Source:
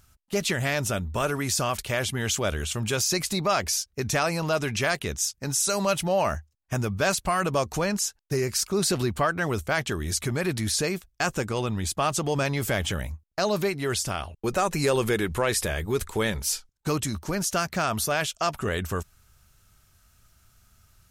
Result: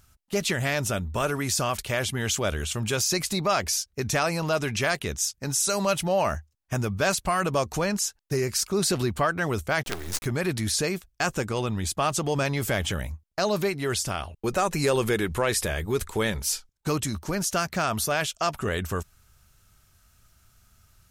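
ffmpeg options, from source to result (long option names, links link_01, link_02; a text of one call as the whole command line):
ffmpeg -i in.wav -filter_complex "[0:a]asettb=1/sr,asplit=3[link_01][link_02][link_03];[link_01]atrim=end=9.834[link_04];[link_02]atrim=start=9.83:end=10.26,asetpts=PTS-STARTPTS,afade=type=in:duration=0.004:curve=qsin,afade=type=out:start_time=0.426:duration=0.004:curve=qsin,acrusher=bits=4:dc=4:mix=0:aa=0.000001[link_05];[link_03]atrim=start=10.256[link_06];[link_04][link_05]acrossfade=duration=0.004:curve1=hsin:curve2=qsin[link_07];[link_07][link_06]acrossfade=duration=0.004:curve1=qsin:curve2=hsin" out.wav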